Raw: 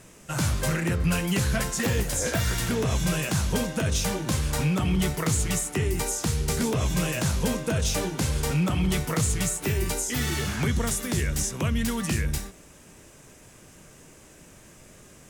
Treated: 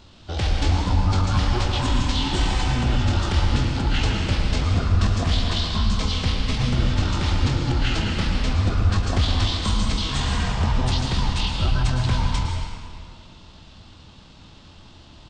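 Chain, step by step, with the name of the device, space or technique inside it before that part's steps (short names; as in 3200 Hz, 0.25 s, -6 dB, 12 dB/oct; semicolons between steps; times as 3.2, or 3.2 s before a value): monster voice (pitch shift -10.5 st; formant shift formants -2.5 st; low shelf 130 Hz +4 dB; echo 0.106 s -11.5 dB; reverb RT60 2.2 s, pre-delay 0.113 s, DRR 1 dB); gain +1 dB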